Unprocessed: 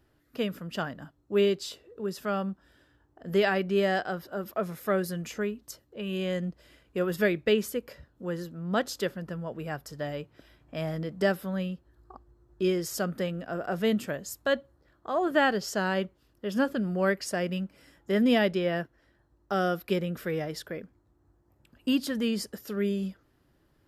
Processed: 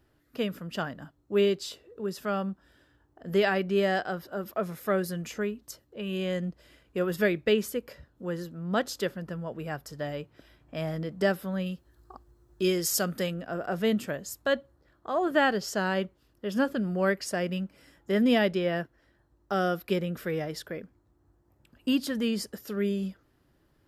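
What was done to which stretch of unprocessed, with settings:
11.66–13.34 s: treble shelf 3.1 kHz +10 dB

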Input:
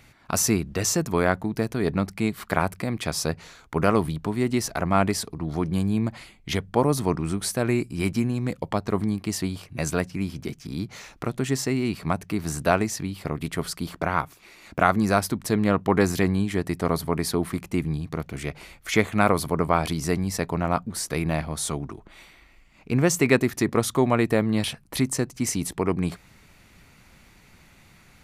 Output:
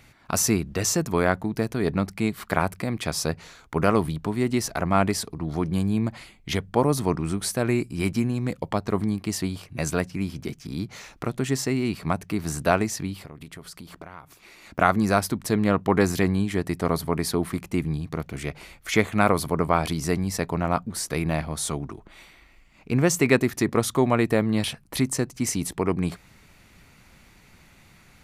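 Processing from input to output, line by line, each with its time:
13.19–14.79 s: compression, threshold -38 dBFS

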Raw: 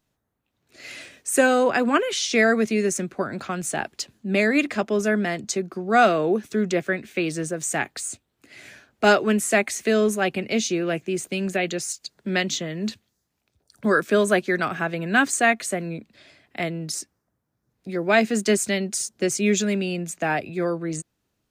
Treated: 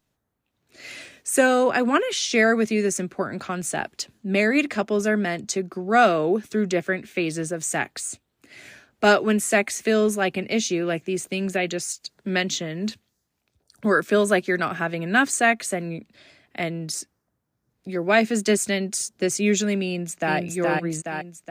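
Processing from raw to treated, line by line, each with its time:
19.85–20.37 s: echo throw 420 ms, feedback 55%, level -1.5 dB

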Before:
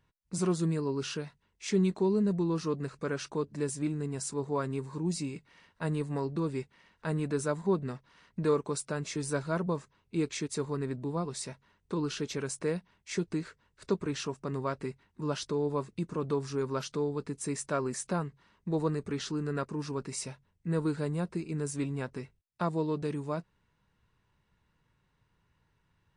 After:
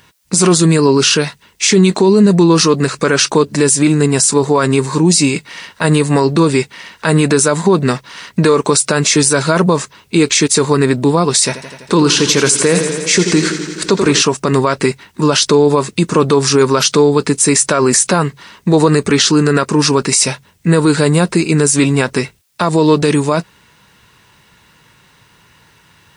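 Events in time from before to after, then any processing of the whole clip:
11.45–14.22 s: modulated delay 84 ms, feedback 75%, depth 51 cents, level -12 dB
whole clip: high-pass 170 Hz 6 dB/octave; treble shelf 2.1 kHz +10 dB; loudness maximiser +25.5 dB; trim -1 dB

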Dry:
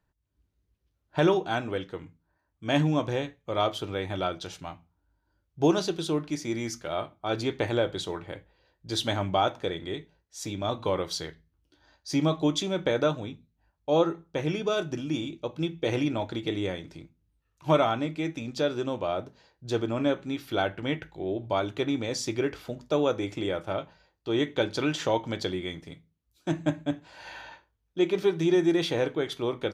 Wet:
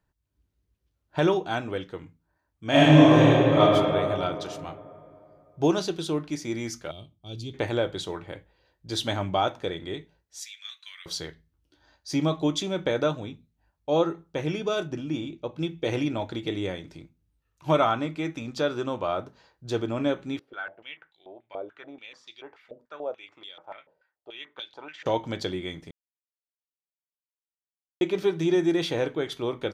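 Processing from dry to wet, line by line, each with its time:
2.69–3.60 s: reverb throw, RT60 2.7 s, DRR -10.5 dB
6.91–7.54 s: FFT filter 130 Hz 0 dB, 760 Hz -21 dB, 1.8 kHz -29 dB, 3 kHz -5 dB
10.40–11.06 s: Chebyshev high-pass 1.8 kHz, order 4
14.87–15.58 s: treble shelf 3.8 kHz -8 dB
17.80–19.71 s: peaking EQ 1.2 kHz +6 dB
20.39–25.06 s: step-sequenced band-pass 6.9 Hz 490–3600 Hz
25.91–28.01 s: mute

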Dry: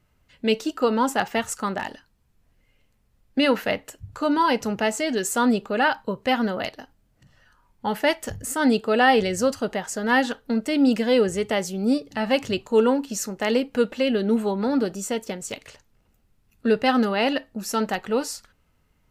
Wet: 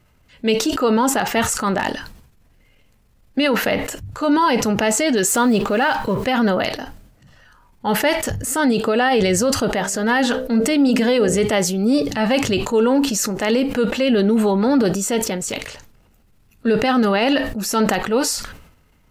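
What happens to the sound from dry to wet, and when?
5.27–6.27 s: companding laws mixed up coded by mu
9.70–11.40 s: de-hum 64.41 Hz, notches 10
whole clip: transient shaper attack -5 dB, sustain +4 dB; peak limiter -17 dBFS; decay stretcher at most 74 dB/s; trim +8 dB

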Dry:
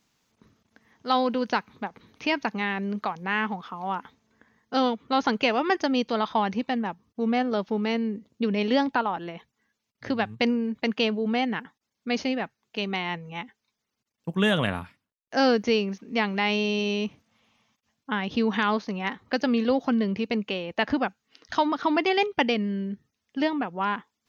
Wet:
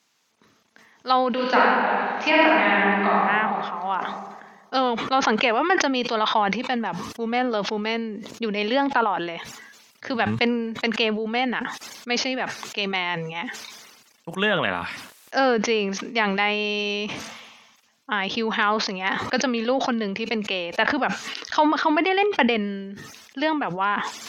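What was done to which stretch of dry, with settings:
1.32–3.22 s: reverb throw, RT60 2.1 s, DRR -7.5 dB
whole clip: high-pass 660 Hz 6 dB/octave; low-pass that closes with the level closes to 2.4 kHz, closed at -22 dBFS; decay stretcher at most 42 dB/s; trim +5.5 dB

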